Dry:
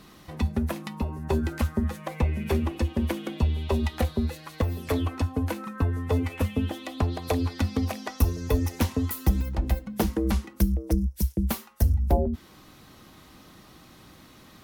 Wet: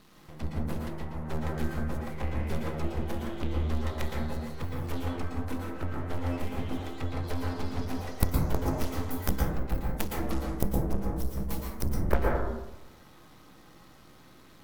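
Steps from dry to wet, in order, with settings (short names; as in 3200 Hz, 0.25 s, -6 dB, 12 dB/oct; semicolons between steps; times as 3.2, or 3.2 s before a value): added harmonics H 2 -14 dB, 3 -19 dB, 4 -7 dB, 6 -23 dB, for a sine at -10.5 dBFS; half-wave rectifier; plate-style reverb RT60 0.99 s, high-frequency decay 0.25×, pre-delay 0.105 s, DRR -2.5 dB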